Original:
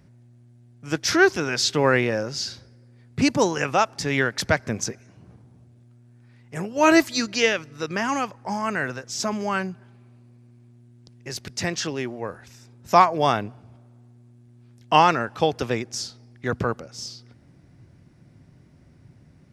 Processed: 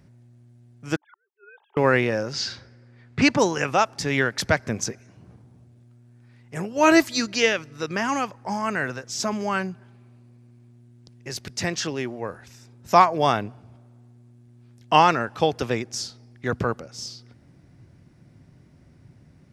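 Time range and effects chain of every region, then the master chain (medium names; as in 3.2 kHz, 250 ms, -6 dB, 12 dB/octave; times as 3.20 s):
0.96–1.77 s: formants replaced by sine waves + band-pass filter 870 Hz, Q 8.7 + inverted gate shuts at -38 dBFS, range -40 dB
2.33–3.39 s: low-pass 6.5 kHz + peaking EQ 1.6 kHz +8 dB 2.1 oct
whole clip: none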